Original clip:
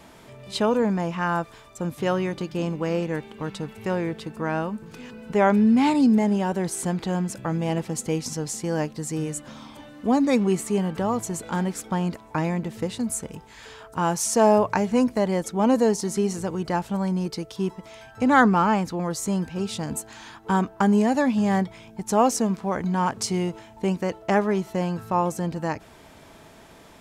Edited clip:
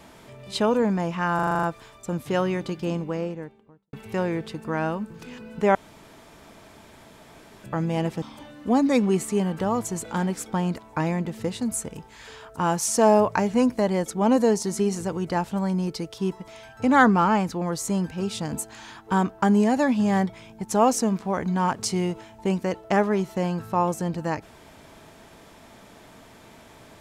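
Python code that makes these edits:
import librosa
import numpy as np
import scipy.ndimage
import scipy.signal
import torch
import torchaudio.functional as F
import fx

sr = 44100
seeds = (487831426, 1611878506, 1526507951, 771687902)

y = fx.studio_fade_out(x, sr, start_s=2.47, length_s=1.18)
y = fx.edit(y, sr, fx.stutter(start_s=1.35, slice_s=0.04, count=8),
    fx.room_tone_fill(start_s=5.47, length_s=1.89),
    fx.cut(start_s=7.94, length_s=1.66), tone=tone)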